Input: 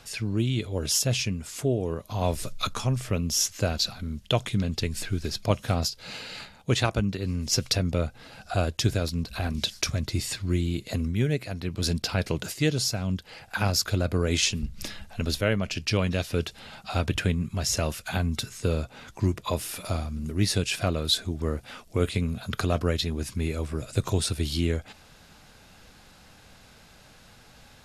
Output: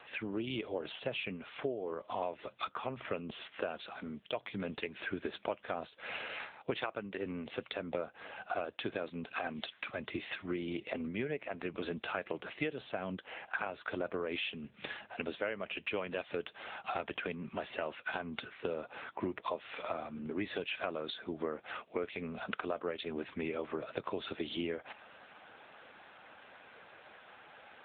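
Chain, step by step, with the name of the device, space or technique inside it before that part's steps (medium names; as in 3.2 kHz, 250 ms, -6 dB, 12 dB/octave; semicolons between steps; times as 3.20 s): 8.64–10.82 s: Chebyshev low-pass 12 kHz, order 10; voicemail (band-pass 420–2800 Hz; compression 8:1, threshold -36 dBFS, peak gain reduction 15 dB; trim +4 dB; AMR-NB 7.95 kbps 8 kHz)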